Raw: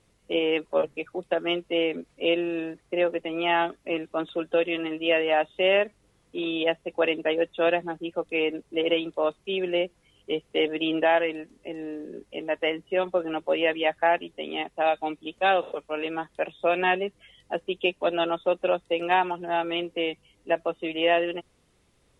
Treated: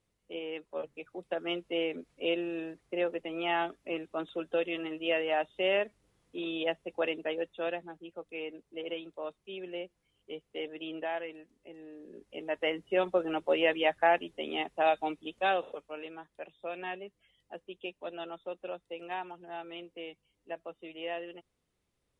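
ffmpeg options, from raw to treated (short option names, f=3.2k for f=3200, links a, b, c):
-af "volume=4dB,afade=t=in:st=0.7:d=0.92:silence=0.421697,afade=t=out:st=6.91:d=1.05:silence=0.446684,afade=t=in:st=11.92:d=1.04:silence=0.281838,afade=t=out:st=14.94:d=1.24:silence=0.237137"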